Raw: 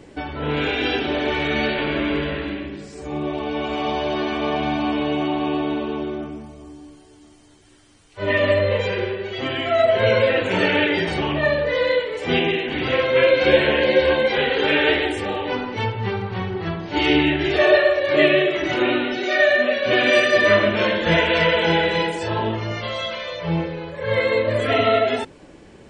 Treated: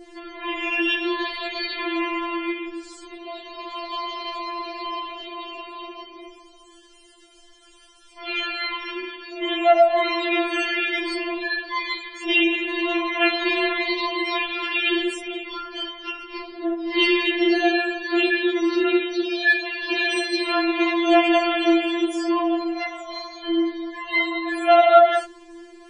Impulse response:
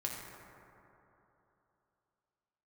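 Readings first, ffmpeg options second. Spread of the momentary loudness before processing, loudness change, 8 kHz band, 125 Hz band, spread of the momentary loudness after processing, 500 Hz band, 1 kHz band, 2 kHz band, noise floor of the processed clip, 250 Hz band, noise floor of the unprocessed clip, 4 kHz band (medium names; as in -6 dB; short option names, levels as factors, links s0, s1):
11 LU, -2.0 dB, no reading, under -40 dB, 16 LU, -5.0 dB, +1.0 dB, -2.5 dB, -51 dBFS, 0.0 dB, -47 dBFS, -1.0 dB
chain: -af "adynamicequalizer=threshold=0.0224:dfrequency=2300:dqfactor=1.5:tfrequency=2300:tqfactor=1.5:attack=5:release=100:ratio=0.375:range=2:mode=cutabove:tftype=bell,afftfilt=real='re*4*eq(mod(b,16),0)':imag='im*4*eq(mod(b,16),0)':win_size=2048:overlap=0.75,volume=1.58"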